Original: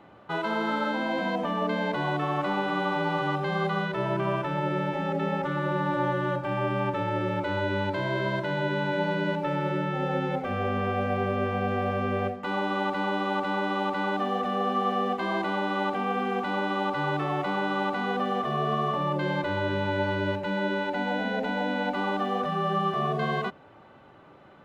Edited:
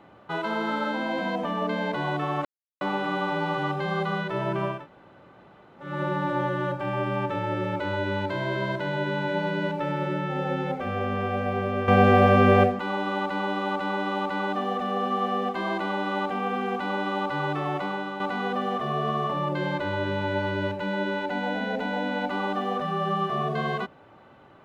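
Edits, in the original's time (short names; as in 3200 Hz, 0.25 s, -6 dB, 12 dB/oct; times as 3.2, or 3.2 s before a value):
2.45 insert silence 0.36 s
4.4–5.53 room tone, crossfade 0.24 s
11.52–12.43 gain +10.5 dB
17.4–17.84 fade out, to -8 dB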